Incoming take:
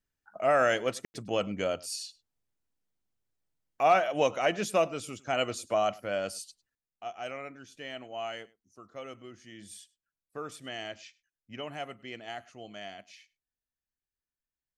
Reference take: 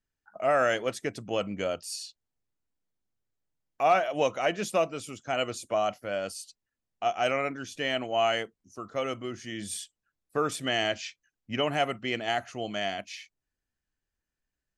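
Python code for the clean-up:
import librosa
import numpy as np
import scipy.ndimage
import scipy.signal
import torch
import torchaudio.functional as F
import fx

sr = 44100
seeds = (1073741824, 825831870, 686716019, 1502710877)

y = fx.fix_ambience(x, sr, seeds[0], print_start_s=2.22, print_end_s=2.72, start_s=1.05, end_s=1.14)
y = fx.fix_echo_inverse(y, sr, delay_ms=102, level_db=-23.0)
y = fx.gain(y, sr, db=fx.steps((0.0, 0.0), (6.75, 11.5)))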